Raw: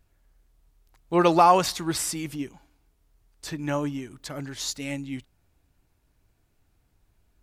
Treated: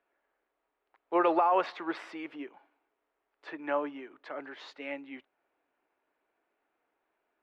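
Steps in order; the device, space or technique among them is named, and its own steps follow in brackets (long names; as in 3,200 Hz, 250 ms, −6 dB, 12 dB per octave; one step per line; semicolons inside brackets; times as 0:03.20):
three-way crossover with the lows and the highs turned down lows −22 dB, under 320 Hz, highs −23 dB, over 2,700 Hz
DJ mixer with the lows and highs turned down (three-way crossover with the lows and the highs turned down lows −20 dB, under 230 Hz, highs −23 dB, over 4,600 Hz; brickwall limiter −16.5 dBFS, peak gain reduction 11 dB)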